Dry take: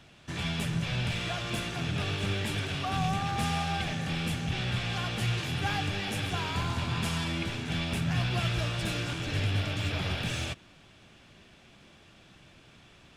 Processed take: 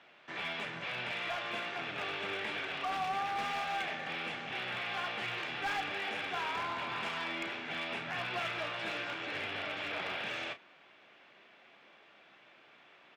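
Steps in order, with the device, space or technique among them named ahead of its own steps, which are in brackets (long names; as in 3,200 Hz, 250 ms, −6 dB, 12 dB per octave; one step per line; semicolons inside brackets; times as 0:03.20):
megaphone (band-pass filter 500–2,600 Hz; parametric band 2,100 Hz +4 dB 0.23 octaves; hard clipping −30.5 dBFS, distortion −19 dB; double-tracking delay 33 ms −11 dB)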